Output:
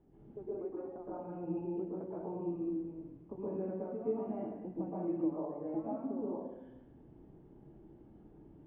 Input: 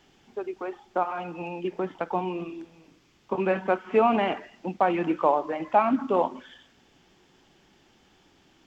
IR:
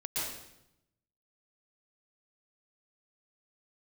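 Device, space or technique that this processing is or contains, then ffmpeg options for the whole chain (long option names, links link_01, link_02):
television next door: -filter_complex "[0:a]acompressor=threshold=-40dB:ratio=4,lowpass=410[link_01];[1:a]atrim=start_sample=2205[link_02];[link_01][link_02]afir=irnorm=-1:irlink=0,volume=2dB"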